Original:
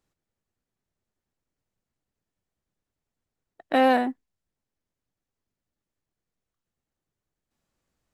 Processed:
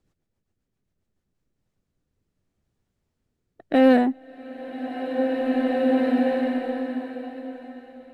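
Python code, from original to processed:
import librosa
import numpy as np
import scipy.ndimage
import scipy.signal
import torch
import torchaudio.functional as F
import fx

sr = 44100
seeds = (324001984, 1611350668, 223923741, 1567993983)

y = fx.low_shelf(x, sr, hz=410.0, db=7.0)
y = fx.rotary_switch(y, sr, hz=7.5, then_hz=0.65, switch_at_s=0.94)
y = fx.high_shelf(y, sr, hz=9400.0, db=-6.5)
y = fx.rev_bloom(y, sr, seeds[0], attack_ms=2360, drr_db=0.0)
y = y * librosa.db_to_amplitude(4.0)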